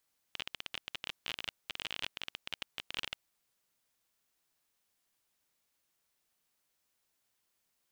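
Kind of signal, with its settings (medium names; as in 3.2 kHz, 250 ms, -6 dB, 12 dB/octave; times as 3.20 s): random clicks 27 per s -20.5 dBFS 2.80 s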